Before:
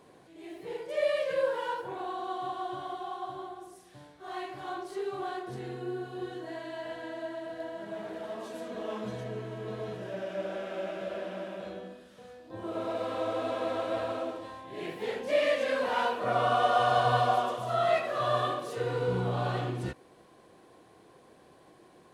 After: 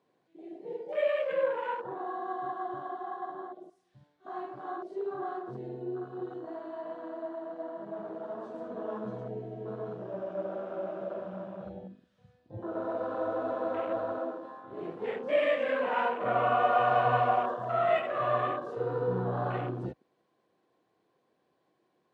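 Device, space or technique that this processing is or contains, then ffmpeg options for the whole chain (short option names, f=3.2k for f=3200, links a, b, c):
over-cleaned archive recording: -filter_complex "[0:a]asplit=3[a][b][c];[a]afade=t=out:st=11.19:d=0.02[d];[b]asubboost=boost=11:cutoff=93,afade=t=in:st=11.19:d=0.02,afade=t=out:st=12.57:d=0.02[e];[c]afade=t=in:st=12.57:d=0.02[f];[d][e][f]amix=inputs=3:normalize=0,highpass=120,lowpass=6k,afwtdn=0.0112"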